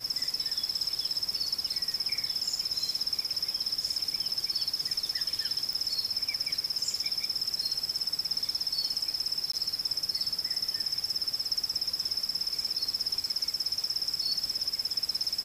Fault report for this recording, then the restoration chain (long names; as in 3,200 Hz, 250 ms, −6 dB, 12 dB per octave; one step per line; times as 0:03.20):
0:05.73: click
0:09.52–0:09.53: drop-out 14 ms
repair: click removal
repair the gap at 0:09.52, 14 ms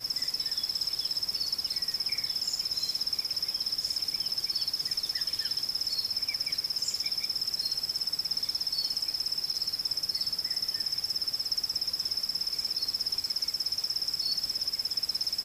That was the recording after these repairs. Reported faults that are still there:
none of them is left